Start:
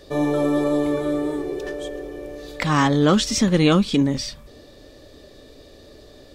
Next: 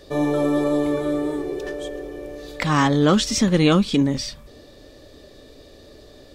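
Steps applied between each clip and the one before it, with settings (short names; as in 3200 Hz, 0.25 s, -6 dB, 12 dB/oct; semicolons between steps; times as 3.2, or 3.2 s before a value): nothing audible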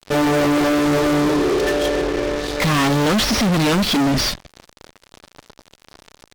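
CVSD 32 kbps; fuzz box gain 34 dB, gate -39 dBFS; gain -2 dB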